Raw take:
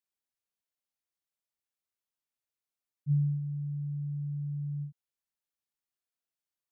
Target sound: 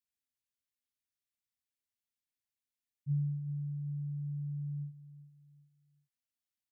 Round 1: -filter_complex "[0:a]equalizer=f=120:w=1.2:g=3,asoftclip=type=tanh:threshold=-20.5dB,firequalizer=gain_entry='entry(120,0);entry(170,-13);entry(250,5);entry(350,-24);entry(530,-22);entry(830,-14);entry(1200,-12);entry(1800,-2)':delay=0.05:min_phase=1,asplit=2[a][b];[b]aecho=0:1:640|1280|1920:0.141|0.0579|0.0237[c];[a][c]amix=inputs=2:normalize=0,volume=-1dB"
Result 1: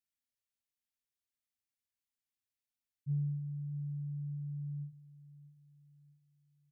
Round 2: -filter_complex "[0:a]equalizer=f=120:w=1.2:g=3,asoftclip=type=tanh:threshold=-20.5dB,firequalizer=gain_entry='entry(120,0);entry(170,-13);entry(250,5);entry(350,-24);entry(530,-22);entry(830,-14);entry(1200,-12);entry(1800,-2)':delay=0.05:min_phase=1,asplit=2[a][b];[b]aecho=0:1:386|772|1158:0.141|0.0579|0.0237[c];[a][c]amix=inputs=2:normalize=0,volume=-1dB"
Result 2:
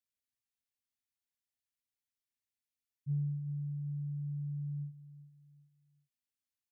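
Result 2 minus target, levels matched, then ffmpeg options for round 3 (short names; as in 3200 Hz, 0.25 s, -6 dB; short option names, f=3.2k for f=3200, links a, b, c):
soft clip: distortion +13 dB
-filter_complex "[0:a]equalizer=f=120:w=1.2:g=3,asoftclip=type=tanh:threshold=-13dB,firequalizer=gain_entry='entry(120,0);entry(170,-13);entry(250,5);entry(350,-24);entry(530,-22);entry(830,-14);entry(1200,-12);entry(1800,-2)':delay=0.05:min_phase=1,asplit=2[a][b];[b]aecho=0:1:386|772|1158:0.141|0.0579|0.0237[c];[a][c]amix=inputs=2:normalize=0,volume=-1dB"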